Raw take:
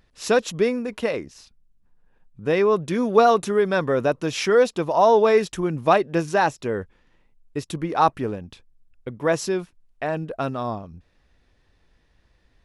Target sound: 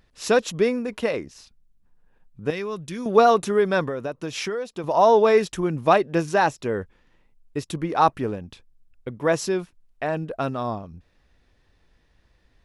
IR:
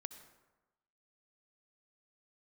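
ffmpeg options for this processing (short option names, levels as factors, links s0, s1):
-filter_complex "[0:a]asettb=1/sr,asplit=3[s0][s1][s2];[s0]atrim=end=2.504[s3];[s1]atrim=start=2.5:end=3.06,asetpts=PTS-STARTPTS,afade=t=in:d=0.004:c=qsin,afade=t=out:st=0.556:d=0.004:c=qsin,equalizer=f=590:w=0.33:g=-13[s4];[s2]atrim=start=3.056[s5];[s3][s4]acrossfade=d=0.004:c1=hsin:c2=qsin[s6];[s6][s5]acrossfade=d=0.004:c1=qsin:c2=hsin,asettb=1/sr,asplit=3[s7][s8][s9];[s7]atrim=end=3.834[s10];[s8]atrim=start=3.83:end=4.84,asetpts=PTS-STARTPTS,afade=t=in:d=0.004:c=qsin,afade=t=out:st=1.006:d=0.004:c=qsin,acompressor=threshold=0.0501:ratio=8[s11];[s9]atrim=start=4.836[s12];[s10][s11]acrossfade=d=0.004:c1=hsin:c2=qsin[s13];[s13][s12]acrossfade=d=0.004:c1=qsin:c2=hsin"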